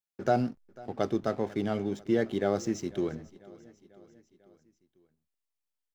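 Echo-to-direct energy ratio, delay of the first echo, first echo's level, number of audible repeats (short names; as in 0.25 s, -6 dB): -20.0 dB, 0.495 s, -21.5 dB, 3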